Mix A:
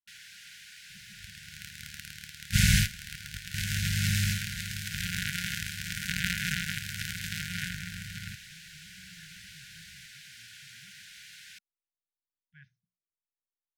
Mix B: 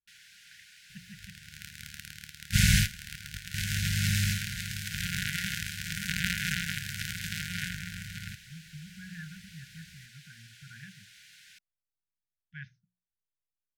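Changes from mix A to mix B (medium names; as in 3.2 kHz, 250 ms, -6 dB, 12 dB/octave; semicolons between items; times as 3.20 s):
speech +11.5 dB; first sound -5.5 dB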